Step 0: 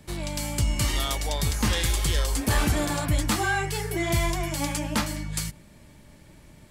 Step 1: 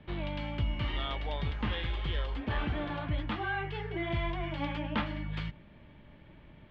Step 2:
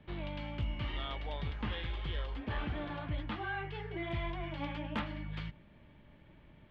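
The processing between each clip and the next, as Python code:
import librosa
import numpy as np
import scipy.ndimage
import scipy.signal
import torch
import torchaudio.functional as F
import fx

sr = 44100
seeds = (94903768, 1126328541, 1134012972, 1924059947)

y1 = scipy.signal.sosfilt(scipy.signal.cheby1(4, 1.0, 3300.0, 'lowpass', fs=sr, output='sos'), x)
y1 = fx.rider(y1, sr, range_db=4, speed_s=0.5)
y1 = F.gain(torch.from_numpy(y1), -6.5).numpy()
y2 = np.clip(10.0 ** (22.5 / 20.0) * y1, -1.0, 1.0) / 10.0 ** (22.5 / 20.0)
y2 = fx.doppler_dist(y2, sr, depth_ms=0.11)
y2 = F.gain(torch.from_numpy(y2), -4.5).numpy()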